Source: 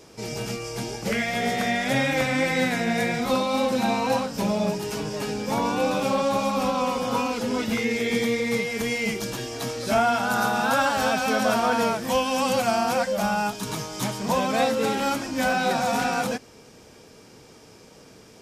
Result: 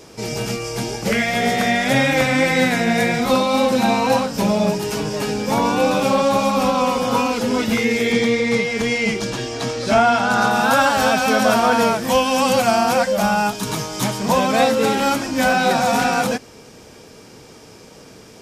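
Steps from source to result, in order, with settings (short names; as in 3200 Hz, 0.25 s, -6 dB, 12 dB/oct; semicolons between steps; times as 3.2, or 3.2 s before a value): 8.12–10.51 LPF 6900 Hz 12 dB/oct; gain +6.5 dB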